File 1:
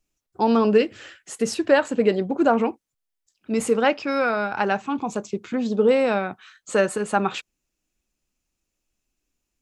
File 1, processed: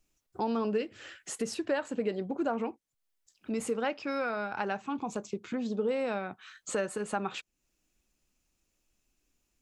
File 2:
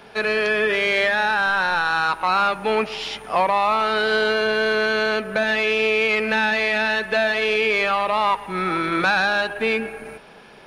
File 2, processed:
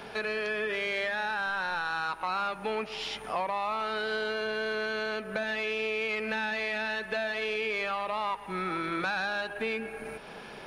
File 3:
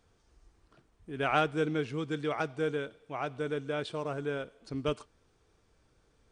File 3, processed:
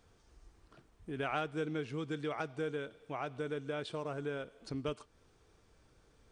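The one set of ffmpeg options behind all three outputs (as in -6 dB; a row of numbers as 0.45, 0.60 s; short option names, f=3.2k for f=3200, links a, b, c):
-af "acompressor=threshold=-42dB:ratio=2,volume=2dB"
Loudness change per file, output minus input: -11.5, -11.5, -6.0 LU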